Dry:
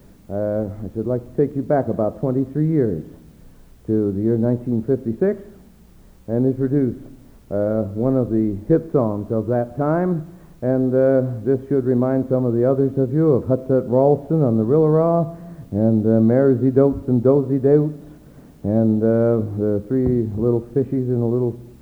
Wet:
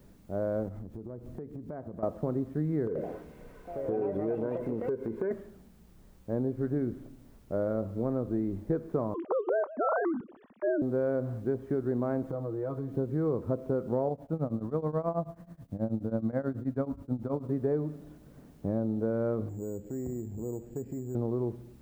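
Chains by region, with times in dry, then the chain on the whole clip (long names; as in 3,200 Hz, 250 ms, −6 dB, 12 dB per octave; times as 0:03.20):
0:00.68–0:02.03: low-shelf EQ 430 Hz +5.5 dB + downward compressor 10 to 1, threshold −28 dBFS
0:02.87–0:05.31: hollow resonant body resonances 460/1,000/1,500/2,100 Hz, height 16 dB, ringing for 25 ms + downward compressor 5 to 1, threshold −21 dBFS + delay with pitch and tempo change per echo 83 ms, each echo +4 semitones, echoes 2, each echo −6 dB
0:09.14–0:10.82: three sine waves on the formant tracks + high-shelf EQ 2,100 Hz +11 dB
0:12.23–0:12.96: comb filter 6.3 ms, depth 80% + downward compressor 3 to 1, threshold −25 dBFS
0:14.09–0:17.49: parametric band 390 Hz −12.5 dB 0.25 octaves + shaped tremolo triangle 9.3 Hz, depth 95%
0:19.49–0:21.15: parametric band 1,200 Hz −12.5 dB 0.55 octaves + downward compressor 2 to 1, threshold −30 dBFS + bad sample-rate conversion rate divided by 6×, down filtered, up hold
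whole clip: downward compressor, threshold −17 dBFS; dynamic equaliser 1,200 Hz, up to +4 dB, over −40 dBFS, Q 0.85; level −9 dB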